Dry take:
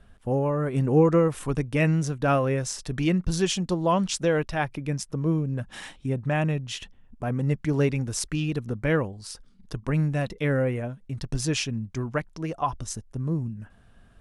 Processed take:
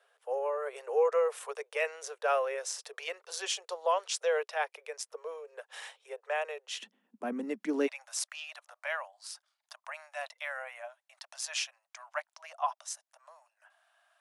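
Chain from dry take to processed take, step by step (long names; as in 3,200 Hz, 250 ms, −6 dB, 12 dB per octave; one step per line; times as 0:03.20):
Butterworth high-pass 430 Hz 96 dB per octave, from 0:06.81 200 Hz, from 0:07.86 600 Hz
level −4.5 dB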